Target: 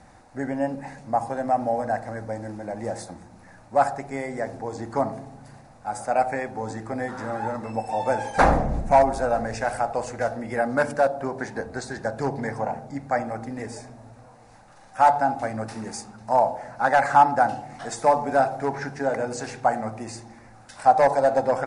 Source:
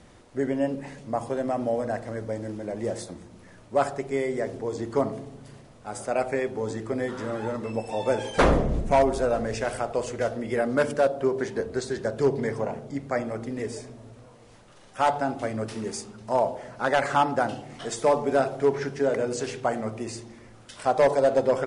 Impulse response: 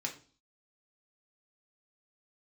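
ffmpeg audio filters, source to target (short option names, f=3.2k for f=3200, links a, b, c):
-af "equalizer=f=400:t=o:w=0.33:g=-10,equalizer=f=800:t=o:w=0.33:g=12,equalizer=f=1.6k:t=o:w=0.33:g=5,equalizer=f=3.15k:t=o:w=0.33:g=-11"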